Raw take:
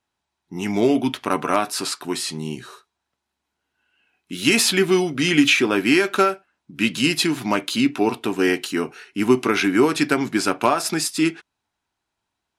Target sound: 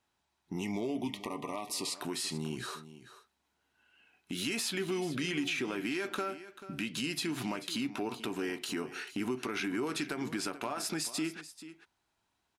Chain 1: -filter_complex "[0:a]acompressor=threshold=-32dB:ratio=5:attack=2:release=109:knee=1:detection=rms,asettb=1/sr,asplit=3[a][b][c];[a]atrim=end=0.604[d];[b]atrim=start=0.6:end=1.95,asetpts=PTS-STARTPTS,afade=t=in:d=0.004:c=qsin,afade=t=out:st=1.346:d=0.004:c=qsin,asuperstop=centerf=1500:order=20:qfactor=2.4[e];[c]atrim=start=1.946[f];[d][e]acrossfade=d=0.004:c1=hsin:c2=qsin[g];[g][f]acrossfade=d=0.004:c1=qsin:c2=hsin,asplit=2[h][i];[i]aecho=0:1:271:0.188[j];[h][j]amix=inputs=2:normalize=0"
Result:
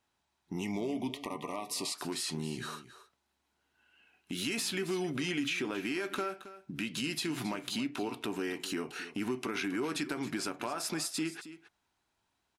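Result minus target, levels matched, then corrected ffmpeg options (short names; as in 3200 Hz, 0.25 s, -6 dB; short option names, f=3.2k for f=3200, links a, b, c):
echo 0.167 s early
-filter_complex "[0:a]acompressor=threshold=-32dB:ratio=5:attack=2:release=109:knee=1:detection=rms,asettb=1/sr,asplit=3[a][b][c];[a]atrim=end=0.604[d];[b]atrim=start=0.6:end=1.95,asetpts=PTS-STARTPTS,afade=t=in:d=0.004:c=qsin,afade=t=out:st=1.346:d=0.004:c=qsin,asuperstop=centerf=1500:order=20:qfactor=2.4[e];[c]atrim=start=1.946[f];[d][e]acrossfade=d=0.004:c1=hsin:c2=qsin[g];[g][f]acrossfade=d=0.004:c1=qsin:c2=hsin,asplit=2[h][i];[i]aecho=0:1:438:0.188[j];[h][j]amix=inputs=2:normalize=0"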